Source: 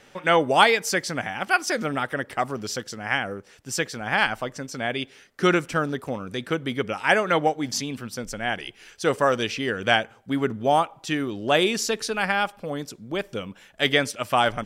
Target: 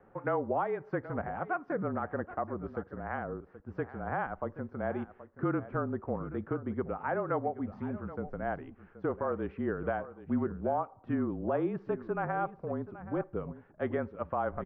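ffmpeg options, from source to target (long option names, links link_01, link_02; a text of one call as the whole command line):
ffmpeg -i in.wav -filter_complex "[0:a]lowpass=frequency=1300:width=0.5412,lowpass=frequency=1300:width=1.3066,alimiter=limit=-17.5dB:level=0:latency=1:release=295,afreqshift=-31,asplit=2[link_01][link_02];[link_02]aecho=0:1:777:0.178[link_03];[link_01][link_03]amix=inputs=2:normalize=0,volume=-4.5dB" out.wav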